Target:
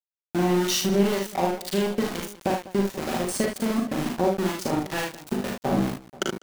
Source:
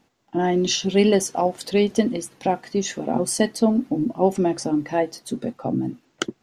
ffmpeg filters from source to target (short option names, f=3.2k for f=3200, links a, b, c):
-filter_complex "[0:a]aecho=1:1:5.2:0.74,acompressor=threshold=-23dB:ratio=5,aeval=exprs='val(0)*gte(abs(val(0)),0.0501)':c=same,acrossover=split=1300[a][b];[a]aeval=exprs='val(0)*(1-0.5/2+0.5/2*cos(2*PI*2.1*n/s))':c=same[c];[b]aeval=exprs='val(0)*(1-0.5/2-0.5/2*cos(2*PI*2.1*n/s))':c=same[d];[c][d]amix=inputs=2:normalize=0,asplit=2[e][f];[f]aecho=0:1:40|56|76|198|483:0.631|0.473|0.473|0.141|0.112[g];[e][g]amix=inputs=2:normalize=0,volume=2dB"